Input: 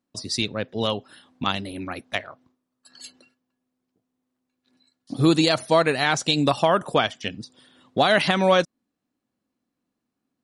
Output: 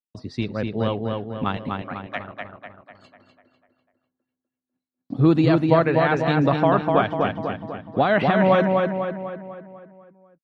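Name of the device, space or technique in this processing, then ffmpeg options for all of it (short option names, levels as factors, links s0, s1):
hearing-loss simulation: -filter_complex "[0:a]asettb=1/sr,asplit=3[s0][s1][s2];[s0]atrim=end=1.574[s3];[s1]atrim=start=1.57:end=2.2,asetpts=PTS-STARTPTS,afade=t=in:d=0.004:c=qsin,afade=t=out:st=0.626:d=0.004:c=qsin,highpass=590[s4];[s2]atrim=start=2.196[s5];[s3][s4]acrossfade=d=0.004:c1=hsin:c2=qsin[s6];[s6][s5]acrossfade=d=0.004:c1=qsin:c2=hsin,lowpass=1800,bass=f=250:g=4,treble=f=4000:g=0,agate=range=0.0224:threshold=0.00251:ratio=3:detection=peak,asplit=2[s7][s8];[s8]adelay=248,lowpass=f=3400:p=1,volume=0.708,asplit=2[s9][s10];[s10]adelay=248,lowpass=f=3400:p=1,volume=0.53,asplit=2[s11][s12];[s12]adelay=248,lowpass=f=3400:p=1,volume=0.53,asplit=2[s13][s14];[s14]adelay=248,lowpass=f=3400:p=1,volume=0.53,asplit=2[s15][s16];[s16]adelay=248,lowpass=f=3400:p=1,volume=0.53,asplit=2[s17][s18];[s18]adelay=248,lowpass=f=3400:p=1,volume=0.53,asplit=2[s19][s20];[s20]adelay=248,lowpass=f=3400:p=1,volume=0.53[s21];[s7][s9][s11][s13][s15][s17][s19][s21]amix=inputs=8:normalize=0"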